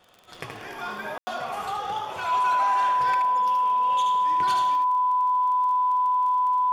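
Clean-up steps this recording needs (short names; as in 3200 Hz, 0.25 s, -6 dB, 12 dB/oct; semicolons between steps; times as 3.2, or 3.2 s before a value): de-click; notch 1000 Hz, Q 30; room tone fill 1.18–1.27; inverse comb 75 ms -5.5 dB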